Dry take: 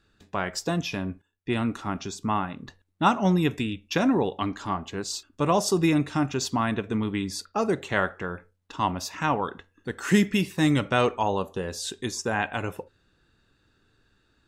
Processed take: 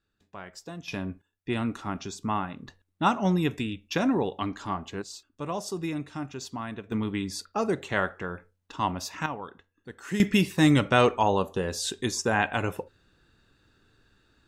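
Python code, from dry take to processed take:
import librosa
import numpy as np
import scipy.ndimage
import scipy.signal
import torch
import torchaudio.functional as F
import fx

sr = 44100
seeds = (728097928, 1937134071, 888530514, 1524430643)

y = fx.gain(x, sr, db=fx.steps((0.0, -13.5), (0.88, -2.5), (5.02, -10.0), (6.92, -2.0), (9.26, -10.5), (10.2, 2.0)))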